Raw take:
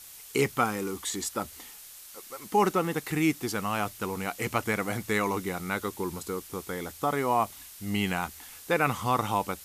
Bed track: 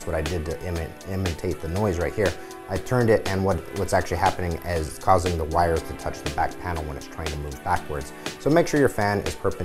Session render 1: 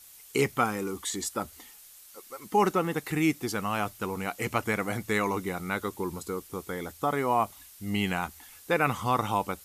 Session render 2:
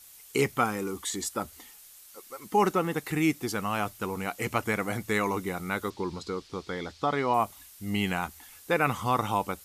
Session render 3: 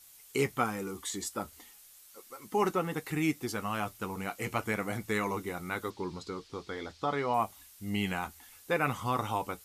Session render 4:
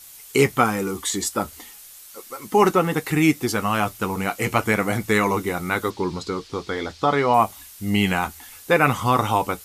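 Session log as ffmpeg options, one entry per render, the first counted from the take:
ffmpeg -i in.wav -af "afftdn=noise_reduction=6:noise_floor=-48" out.wav
ffmpeg -i in.wav -filter_complex "[0:a]asettb=1/sr,asplit=3[link_01][link_02][link_03];[link_01]atrim=end=5.904[link_04];[link_02]atrim=start=5.9:end=7.34,asetpts=PTS-STARTPTS,afade=type=in:duration=0.004:curve=qsin,afade=type=out:start_time=1.436:duration=0.004:curve=qsin,lowpass=frequency=4500:width_type=q:width=2.4[link_05];[link_03]atrim=start=7.336[link_06];[link_04][link_05]acrossfade=duration=0.004:curve1=hsin:curve2=qsin[link_07];[link_07][link_06]acrossfade=duration=0.004:curve1=qsin:curve2=hsin" out.wav
ffmpeg -i in.wav -af "flanger=delay=7.3:depth=2.5:regen=-57:speed=0.33:shape=sinusoidal" out.wav
ffmpeg -i in.wav -af "volume=12dB,alimiter=limit=-3dB:level=0:latency=1" out.wav

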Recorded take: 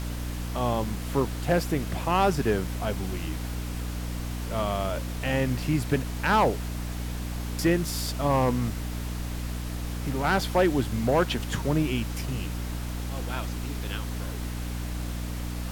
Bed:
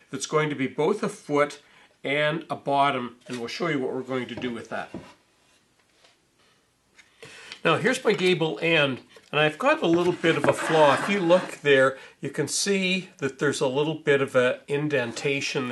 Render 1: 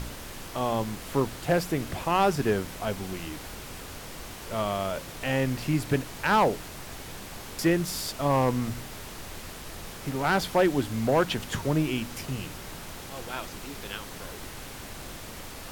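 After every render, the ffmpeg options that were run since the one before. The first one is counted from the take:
ffmpeg -i in.wav -af "bandreject=frequency=60:width_type=h:width=4,bandreject=frequency=120:width_type=h:width=4,bandreject=frequency=180:width_type=h:width=4,bandreject=frequency=240:width_type=h:width=4,bandreject=frequency=300:width_type=h:width=4" out.wav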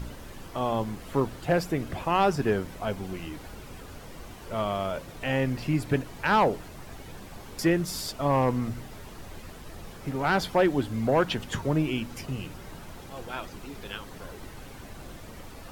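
ffmpeg -i in.wav -af "afftdn=noise_reduction=9:noise_floor=-42" out.wav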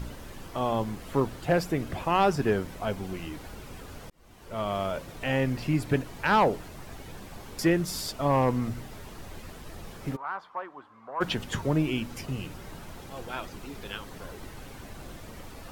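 ffmpeg -i in.wav -filter_complex "[0:a]asplit=3[link_01][link_02][link_03];[link_01]afade=type=out:start_time=10.15:duration=0.02[link_04];[link_02]bandpass=frequency=1100:width_type=q:width=5.2,afade=type=in:start_time=10.15:duration=0.02,afade=type=out:start_time=11.2:duration=0.02[link_05];[link_03]afade=type=in:start_time=11.2:duration=0.02[link_06];[link_04][link_05][link_06]amix=inputs=3:normalize=0,asplit=2[link_07][link_08];[link_07]atrim=end=4.1,asetpts=PTS-STARTPTS,afade=type=out:start_time=4.096:duration=0.004:curve=hsin[link_09];[link_08]atrim=start=4.1,asetpts=PTS-STARTPTS,afade=type=in:duration=0.68[link_10];[link_09][link_10]concat=n=2:v=0:a=1" out.wav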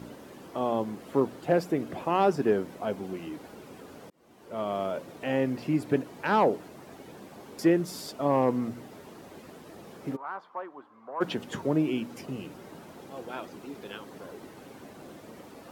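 ffmpeg -i in.wav -af "highpass=280,tiltshelf=frequency=660:gain=6.5" out.wav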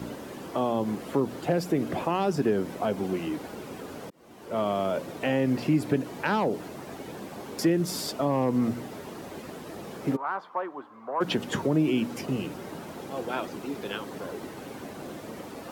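ffmpeg -i in.wav -filter_complex "[0:a]asplit=2[link_01][link_02];[link_02]alimiter=limit=-23.5dB:level=0:latency=1:release=90,volume=2dB[link_03];[link_01][link_03]amix=inputs=2:normalize=0,acrossover=split=250|3000[link_04][link_05][link_06];[link_05]acompressor=threshold=-24dB:ratio=6[link_07];[link_04][link_07][link_06]amix=inputs=3:normalize=0" out.wav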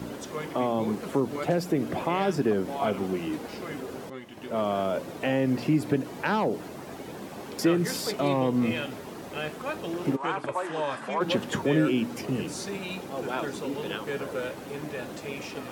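ffmpeg -i in.wav -i bed.wav -filter_complex "[1:a]volume=-12.5dB[link_01];[0:a][link_01]amix=inputs=2:normalize=0" out.wav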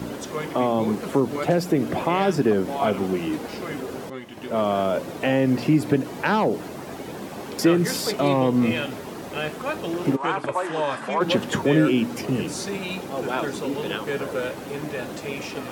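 ffmpeg -i in.wav -af "volume=5dB" out.wav

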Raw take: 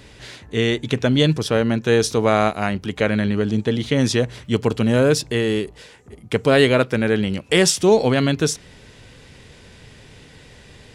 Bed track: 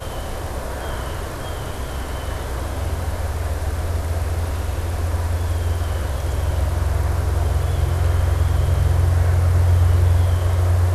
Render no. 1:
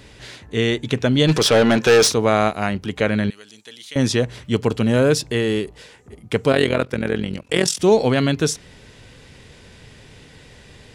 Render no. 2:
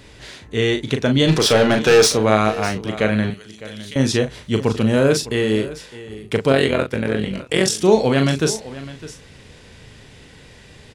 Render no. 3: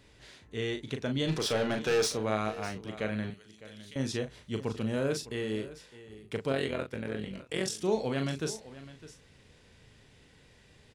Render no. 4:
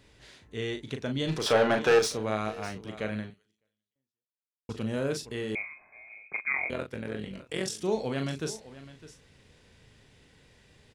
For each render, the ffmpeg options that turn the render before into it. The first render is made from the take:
ffmpeg -i in.wav -filter_complex "[0:a]asplit=3[link_01][link_02][link_03];[link_01]afade=type=out:start_time=1.27:duration=0.02[link_04];[link_02]asplit=2[link_05][link_06];[link_06]highpass=frequency=720:poles=1,volume=22dB,asoftclip=type=tanh:threshold=-5.5dB[link_07];[link_05][link_07]amix=inputs=2:normalize=0,lowpass=frequency=6000:poles=1,volume=-6dB,afade=type=in:start_time=1.27:duration=0.02,afade=type=out:start_time=2.11:duration=0.02[link_08];[link_03]afade=type=in:start_time=2.11:duration=0.02[link_09];[link_04][link_08][link_09]amix=inputs=3:normalize=0,asettb=1/sr,asplit=3[link_10][link_11][link_12];[link_10]atrim=end=3.304[link_13];[link_11]atrim=start=3.3:end=3.96,asetpts=PTS-STARTPTS,afade=type=in:duration=0.004:curve=qsin,afade=type=out:start_time=0.656:duration=0.004:curve=qsin,aderivative[link_14];[link_12]atrim=start=3.956[link_15];[link_13][link_14]acrossfade=duration=0.004:curve1=hsin:curve2=qsin[link_16];[link_16][link_15]acrossfade=duration=0.004:curve1=qsin:curve2=hsin,asettb=1/sr,asplit=3[link_17][link_18][link_19];[link_17]atrim=end=6.524[link_20];[link_18]atrim=start=6.52:end=7.8,asetpts=PTS-STARTPTS,afade=type=in:duration=0.004:curve=qsin,afade=type=out:start_time=1.276:duration=0.004:curve=qsin,tremolo=f=43:d=0.824[link_21];[link_19]atrim=start=7.796[link_22];[link_20][link_21]acrossfade=duration=0.004:curve1=hsin:curve2=qsin[link_23];[link_23][link_22]acrossfade=duration=0.004:curve1=qsin:curve2=hsin" out.wav
ffmpeg -i in.wav -filter_complex "[0:a]asplit=2[link_01][link_02];[link_02]adelay=37,volume=-7dB[link_03];[link_01][link_03]amix=inputs=2:normalize=0,aecho=1:1:607:0.15" out.wav
ffmpeg -i in.wav -af "volume=-15dB" out.wav
ffmpeg -i in.wav -filter_complex "[0:a]asettb=1/sr,asplit=3[link_01][link_02][link_03];[link_01]atrim=end=1.464[link_04];[link_02]atrim=start=1.46:end=1.99,asetpts=PTS-STARTPTS,afade=type=in:duration=0.004:curve=qsin,afade=type=out:start_time=0.526:duration=0.004:curve=qsin,equalizer=frequency=940:width=0.46:gain=10[link_05];[link_03]atrim=start=1.986[link_06];[link_04][link_05]acrossfade=duration=0.004:curve1=hsin:curve2=qsin[link_07];[link_07][link_06]acrossfade=duration=0.004:curve1=qsin:curve2=hsin,asettb=1/sr,asplit=3[link_08][link_09][link_10];[link_08]atrim=end=5.554[link_11];[link_09]atrim=start=5.55:end=6.7,asetpts=PTS-STARTPTS,afade=type=in:duration=0.004:curve=qsin,afade=type=out:start_time=1.146:duration=0.004:curve=qsin,lowpass=frequency=2200:width_type=q:width=0.5098,lowpass=frequency=2200:width_type=q:width=0.6013,lowpass=frequency=2200:width_type=q:width=0.9,lowpass=frequency=2200:width_type=q:width=2.563,afreqshift=-2600[link_12];[link_10]atrim=start=6.696[link_13];[link_11][link_12]acrossfade=duration=0.004:curve1=hsin:curve2=qsin[link_14];[link_14][link_13]acrossfade=duration=0.004:curve1=qsin:curve2=hsin,asplit=2[link_15][link_16];[link_15]atrim=end=4.69,asetpts=PTS-STARTPTS,afade=type=out:start_time=3.18:duration=1.51:curve=exp[link_17];[link_16]atrim=start=4.69,asetpts=PTS-STARTPTS,afade=type=in:duration=0.004:curve=hsin[link_18];[link_17][link_18]concat=n=2:v=0:a=1" out.wav

